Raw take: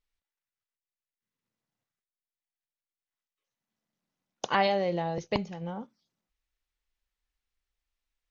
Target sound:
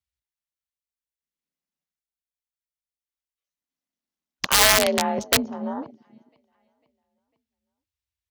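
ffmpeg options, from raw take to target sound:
ffmpeg -i in.wav -filter_complex "[0:a]afreqshift=49,equalizer=frequency=150:width_type=o:width=0.46:gain=3.5,asplit=2[link_01][link_02];[link_02]adelay=500,lowpass=frequency=4400:poles=1,volume=-22dB,asplit=2[link_03][link_04];[link_04]adelay=500,lowpass=frequency=4400:poles=1,volume=0.54,asplit=2[link_05][link_06];[link_06]adelay=500,lowpass=frequency=4400:poles=1,volume=0.54,asplit=2[link_07][link_08];[link_08]adelay=500,lowpass=frequency=4400:poles=1,volume=0.54[link_09];[link_01][link_03][link_05][link_07][link_09]amix=inputs=5:normalize=0,acrossover=split=1200[link_10][link_11];[link_11]alimiter=level_in=0.5dB:limit=-24dB:level=0:latency=1:release=41,volume=-0.5dB[link_12];[link_10][link_12]amix=inputs=2:normalize=0,aeval=exprs='(mod(10*val(0)+1,2)-1)/10':channel_layout=same,highshelf=frequency=2300:gain=8.5,afwtdn=0.00891,volume=6.5dB" out.wav

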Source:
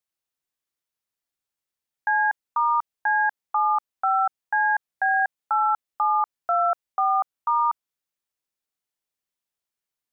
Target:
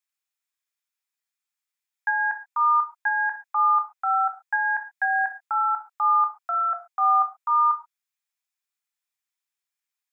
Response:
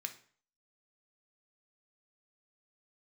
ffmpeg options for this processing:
-filter_complex "[0:a]highpass=frequency=740:width=0.5412,highpass=frequency=740:width=1.3066[link_01];[1:a]atrim=start_sample=2205,afade=type=out:start_time=0.19:duration=0.01,atrim=end_sample=8820[link_02];[link_01][link_02]afir=irnorm=-1:irlink=0,volume=2dB"

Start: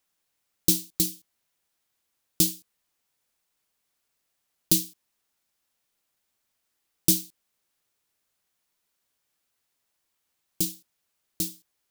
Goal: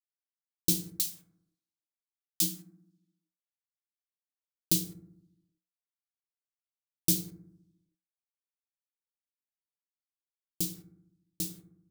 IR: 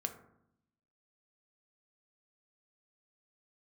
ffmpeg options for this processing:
-filter_complex "[0:a]asplit=3[link_01][link_02][link_03];[link_01]afade=type=out:start_time=0.82:duration=0.02[link_04];[link_02]highpass=1200,afade=type=in:start_time=0.82:duration=0.02,afade=type=out:start_time=2.41:duration=0.02[link_05];[link_03]afade=type=in:start_time=2.41:duration=0.02[link_06];[link_04][link_05][link_06]amix=inputs=3:normalize=0,acrusher=bits=8:mix=0:aa=0.000001[link_07];[1:a]atrim=start_sample=2205[link_08];[link_07][link_08]afir=irnorm=-1:irlink=0,volume=-4.5dB"

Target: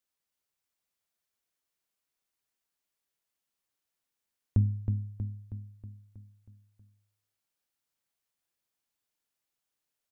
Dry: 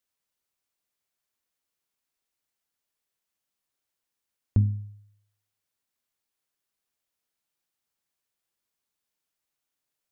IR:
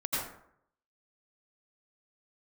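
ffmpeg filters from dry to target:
-af "aecho=1:1:319|638|957|1276|1595|1914|2233:0.501|0.276|0.152|0.0834|0.0459|0.0252|0.0139,volume=-3dB"

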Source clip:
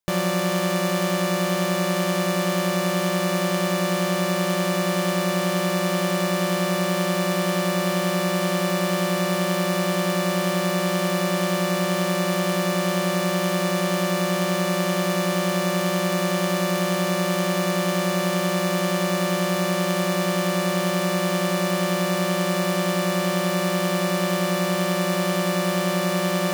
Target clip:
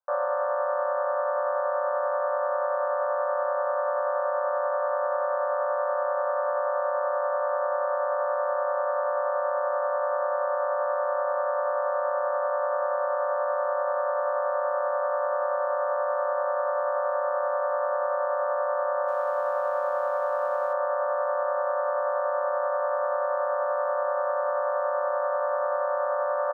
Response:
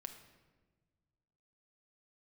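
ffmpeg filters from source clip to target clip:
-filter_complex "[0:a]aemphasis=mode=reproduction:type=50fm,asplit=2[link_01][link_02];[link_02]alimiter=limit=-21dB:level=0:latency=1,volume=3dB[link_03];[link_01][link_03]amix=inputs=2:normalize=0,asuperpass=centerf=890:order=20:qfactor=0.81,aecho=1:1:67|134|201|268|335|402:0.237|0.138|0.0798|0.0463|0.0268|0.0156,asettb=1/sr,asplit=3[link_04][link_05][link_06];[link_04]atrim=end=19.084[link_07];[link_05]atrim=start=19.08:end=20.73,asetpts=PTS-STARTPTS,afade=type=in:duration=0.004:curve=qsin,afade=type=out:start_time=1.646:duration=0.004:curve=qsin,aeval=exprs='sgn(val(0))*max(abs(val(0))-0.00224,0)':channel_layout=same[link_08];[link_06]atrim=start=20.726[link_09];[link_07][link_08]acrossfade=duration=0.004:curve1=hsin:curve2=qsin[link_10];[link_10][link_09]acrossfade=duration=0.004:curve1=qsin:curve2=hsin,volume=-4dB"

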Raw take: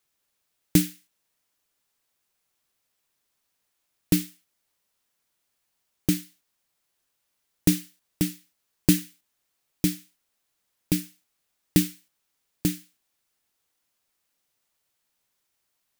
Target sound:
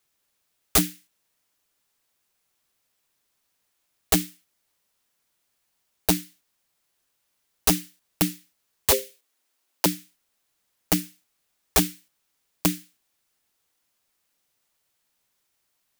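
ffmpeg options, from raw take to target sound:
ffmpeg -i in.wav -filter_complex "[0:a]aeval=exprs='(mod(4.47*val(0)+1,2)-1)/4.47':channel_layout=same,asettb=1/sr,asplit=3[link_01][link_02][link_03];[link_01]atrim=end=8.914[link_04];[link_02]atrim=start=8.91:end=9.86,asetpts=PTS-STARTPTS,afade=type=in:duration=0.004:curve=qsin,afade=type=out:start_time=0.946:duration=0.004:curve=qsin,afreqshift=220[link_05];[link_03]atrim=start=9.856[link_06];[link_04][link_05]acrossfade=duration=0.004:curve1=hsin:curve2=qsin[link_07];[link_07][link_06]acrossfade=duration=0.004:curve1=qsin:curve2=hsin,volume=2.5dB" out.wav

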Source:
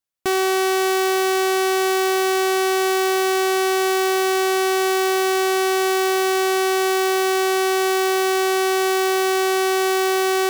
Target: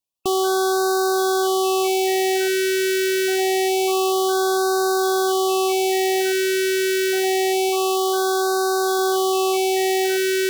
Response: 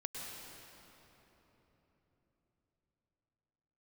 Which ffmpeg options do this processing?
-filter_complex "[0:a]asettb=1/sr,asplit=3[link_01][link_02][link_03];[link_01]atrim=end=7.694[link_04];[link_02]atrim=start=7.69:end=8.99,asetpts=PTS-STARTPTS,afade=type=in:duration=0.004:curve=qsin,afade=type=out:start_time=1.296:duration=0.004:curve=qsin,lowshelf=frequency=130:gain=-9[link_05];[link_03]atrim=start=8.986[link_06];[link_04][link_05]acrossfade=duration=0.004:curve1=hsin:curve2=qsin[link_07];[link_07][link_06]acrossfade=duration=0.004:curve1=qsin:curve2=hsin,afftfilt=real='re*(1-between(b*sr/1024,930*pow(2500/930,0.5+0.5*sin(2*PI*0.26*pts/sr))/1.41,930*pow(2500/930,0.5+0.5*sin(2*PI*0.26*pts/sr))*1.41))':imag='im*(1-between(b*sr/1024,930*pow(2500/930,0.5+0.5*sin(2*PI*0.26*pts/sr))/1.41,930*pow(2500/930,0.5+0.5*sin(2*PI*0.26*pts/sr))*1.41))':win_size=1024:overlap=0.75"

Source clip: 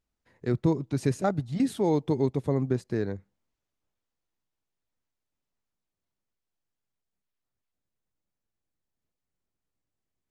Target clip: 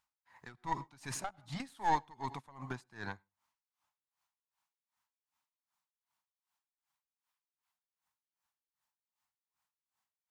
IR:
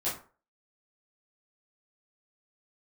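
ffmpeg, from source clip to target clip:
-filter_complex "[0:a]highpass=frequency=90:poles=1,lowshelf=frequency=640:width_type=q:width=3:gain=-12.5,asplit=2[link_01][link_02];[link_02]acompressor=threshold=-39dB:ratio=6,volume=-2dB[link_03];[link_01][link_03]amix=inputs=2:normalize=0,aeval=exprs='(tanh(12.6*val(0)+0.65)-tanh(0.65))/12.6':channel_layout=same,asplit=2[link_04][link_05];[1:a]atrim=start_sample=2205,afade=type=out:start_time=0.13:duration=0.01,atrim=end_sample=6174,adelay=79[link_06];[link_05][link_06]afir=irnorm=-1:irlink=0,volume=-23.5dB[link_07];[link_04][link_07]amix=inputs=2:normalize=0,aeval=exprs='val(0)*pow(10,-24*(0.5-0.5*cos(2*PI*2.6*n/s))/20)':channel_layout=same,volume=4dB"

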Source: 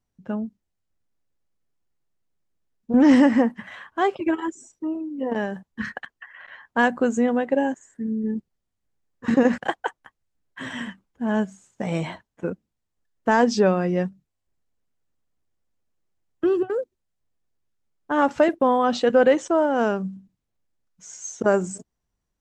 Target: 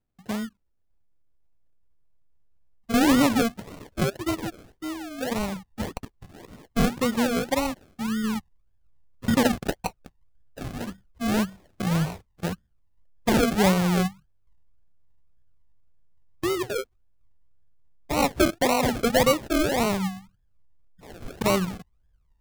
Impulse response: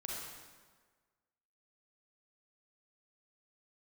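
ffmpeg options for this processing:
-af "asubboost=boost=9:cutoff=100,acrusher=samples=37:mix=1:aa=0.000001:lfo=1:lforange=22.2:lforate=1.8,volume=-1dB"

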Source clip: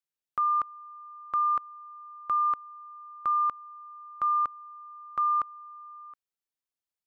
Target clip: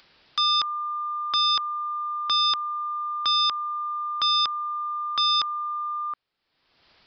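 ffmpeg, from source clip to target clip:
ffmpeg -i in.wav -af "aresample=11025,aeval=exprs='0.0841*sin(PI/2*3.16*val(0)/0.0841)':channel_layout=same,aresample=44100,acompressor=mode=upward:threshold=-43dB:ratio=2.5,volume=2.5dB" out.wav

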